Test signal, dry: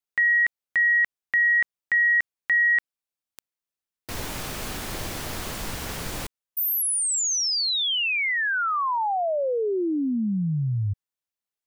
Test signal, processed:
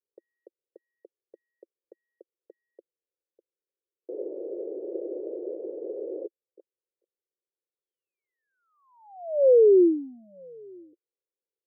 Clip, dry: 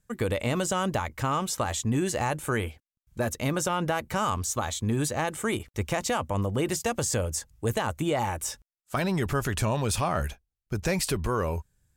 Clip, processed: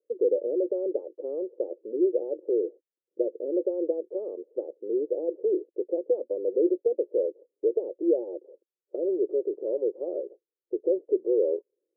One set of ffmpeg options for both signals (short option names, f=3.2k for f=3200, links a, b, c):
-filter_complex "[0:a]asplit=2[a][b];[b]alimiter=limit=-21.5dB:level=0:latency=1,volume=-1dB[c];[a][c]amix=inputs=2:normalize=0,asoftclip=type=tanh:threshold=-13dB,asuperpass=centerf=430:order=8:qfactor=2,volume=4.5dB"